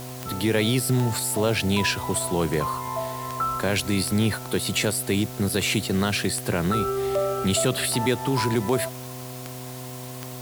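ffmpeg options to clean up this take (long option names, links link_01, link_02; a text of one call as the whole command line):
ffmpeg -i in.wav -af "adeclick=threshold=4,bandreject=frequency=126.9:width_type=h:width=4,bandreject=frequency=253.8:width_type=h:width=4,bandreject=frequency=380.7:width_type=h:width=4,bandreject=frequency=507.6:width_type=h:width=4,bandreject=frequency=634.5:width_type=h:width=4,bandreject=frequency=730:width=30,afwtdn=0.0079" out.wav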